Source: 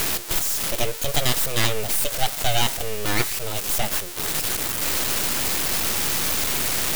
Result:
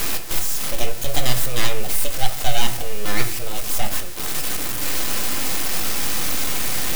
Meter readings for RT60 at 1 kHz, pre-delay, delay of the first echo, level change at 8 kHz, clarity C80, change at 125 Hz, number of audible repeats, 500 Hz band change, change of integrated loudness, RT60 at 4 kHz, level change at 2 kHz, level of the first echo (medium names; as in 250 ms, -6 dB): 0.40 s, 3 ms, no echo, -1.5 dB, 16.5 dB, +0.5 dB, no echo, -1.0 dB, -1.0 dB, 0.30 s, -1.0 dB, no echo